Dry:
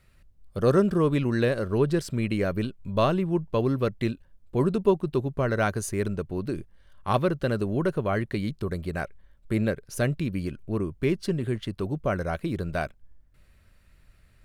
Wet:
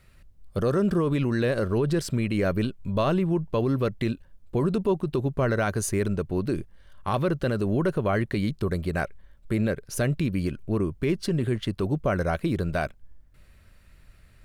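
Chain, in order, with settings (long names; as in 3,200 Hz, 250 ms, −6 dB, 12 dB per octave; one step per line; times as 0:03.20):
brickwall limiter −19.5 dBFS, peak gain reduction 9 dB
level +4 dB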